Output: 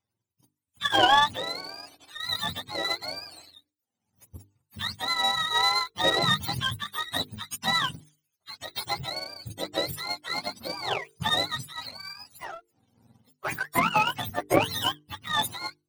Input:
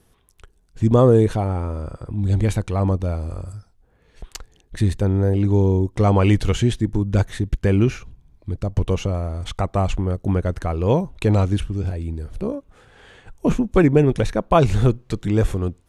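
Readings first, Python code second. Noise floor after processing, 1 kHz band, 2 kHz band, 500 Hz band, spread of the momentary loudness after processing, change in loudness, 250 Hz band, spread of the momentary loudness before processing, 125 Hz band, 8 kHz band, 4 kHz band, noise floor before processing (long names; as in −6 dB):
−85 dBFS, +1.0 dB, +6.0 dB, −13.0 dB, 16 LU, −6.5 dB, −17.0 dB, 13 LU, −21.5 dB, +1.0 dB, +12.0 dB, −59 dBFS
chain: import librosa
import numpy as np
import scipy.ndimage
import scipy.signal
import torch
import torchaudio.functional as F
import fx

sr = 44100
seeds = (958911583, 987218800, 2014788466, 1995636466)

y = fx.octave_mirror(x, sr, pivot_hz=620.0)
y = fx.power_curve(y, sr, exponent=1.4)
y = fx.hum_notches(y, sr, base_hz=50, count=9)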